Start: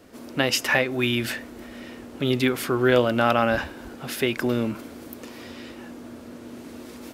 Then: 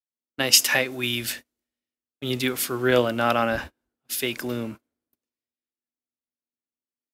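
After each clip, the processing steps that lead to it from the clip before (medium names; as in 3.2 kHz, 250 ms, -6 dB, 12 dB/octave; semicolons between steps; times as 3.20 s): treble shelf 3.5 kHz +11.5 dB; gate -29 dBFS, range -31 dB; three bands expanded up and down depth 70%; trim -4.5 dB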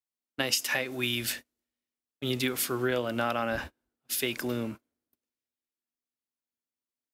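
compression 10:1, threshold -22 dBFS, peak gain reduction 12 dB; trim -2 dB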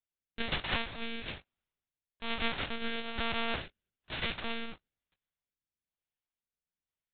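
formants flattened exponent 0.1; rotary cabinet horn 1.1 Hz; monotone LPC vocoder at 8 kHz 230 Hz; trim +2.5 dB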